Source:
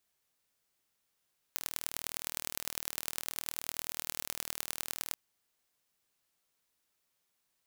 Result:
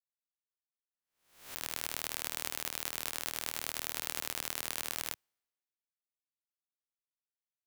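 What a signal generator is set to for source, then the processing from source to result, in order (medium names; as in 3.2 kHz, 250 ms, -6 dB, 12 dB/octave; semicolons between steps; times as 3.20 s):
pulse train 39.4 per s, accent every 4, -6 dBFS 3.60 s
reverse spectral sustain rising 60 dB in 1.10 s; tone controls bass -4 dB, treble -4 dB; three bands expanded up and down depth 100%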